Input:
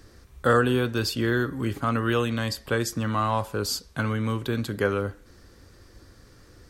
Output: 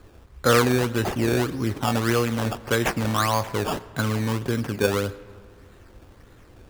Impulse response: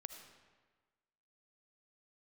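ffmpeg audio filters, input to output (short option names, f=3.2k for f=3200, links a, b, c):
-filter_complex "[0:a]asettb=1/sr,asplit=3[a][b][c];[a]atrim=end=2.634[d];[b]atrim=start=2.63:end=3.59,asetpts=PTS-STARTPTS,afade=t=in:d=0.004:c=qsin,afade=t=out:st=0.956:d=0.004:c=qsin,highshelf=f=4.1k:g=9.5[e];[c]atrim=start=3.586[f];[d][e]acrossfade=d=0.004:c1=hsin:c2=qsin[g];[g][f]acrossfade=d=0.004:c1=qsin:c2=hsin,acrusher=samples=15:mix=1:aa=0.000001:lfo=1:lforange=15:lforate=1.7,asplit=2[h][i];[1:a]atrim=start_sample=2205,asetrate=31311,aresample=44100,highshelf=f=5k:g=-9[j];[i][j]afir=irnorm=-1:irlink=0,volume=-7dB[k];[h][k]amix=inputs=2:normalize=0"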